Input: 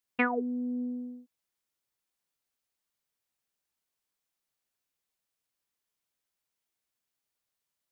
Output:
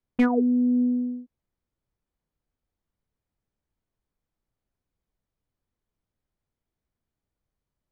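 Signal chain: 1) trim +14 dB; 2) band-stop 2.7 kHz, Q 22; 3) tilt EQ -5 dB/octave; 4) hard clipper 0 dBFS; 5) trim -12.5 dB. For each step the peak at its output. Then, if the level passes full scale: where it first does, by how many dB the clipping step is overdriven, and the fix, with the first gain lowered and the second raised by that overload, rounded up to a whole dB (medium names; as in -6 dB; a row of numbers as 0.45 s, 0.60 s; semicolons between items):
+1.0 dBFS, +0.5 dBFS, +5.5 dBFS, 0.0 dBFS, -12.5 dBFS; step 1, 5.5 dB; step 1 +8 dB, step 5 -6.5 dB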